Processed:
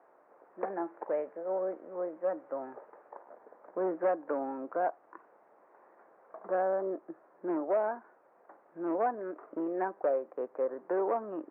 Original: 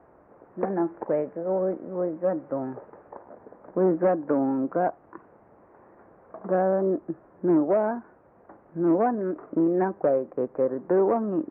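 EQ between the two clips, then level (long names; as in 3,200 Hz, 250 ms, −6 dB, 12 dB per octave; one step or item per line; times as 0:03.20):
high-pass filter 510 Hz 12 dB per octave
−4.0 dB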